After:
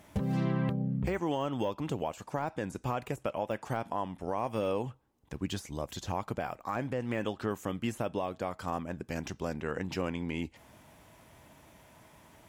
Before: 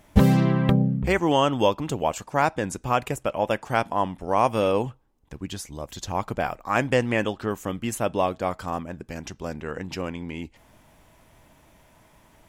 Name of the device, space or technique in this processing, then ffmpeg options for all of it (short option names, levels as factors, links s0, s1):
podcast mastering chain: -af "highpass=65,deesser=0.9,acompressor=threshold=0.0562:ratio=2,alimiter=limit=0.0891:level=0:latency=1:release=494" -ar 44100 -c:a libmp3lame -b:a 112k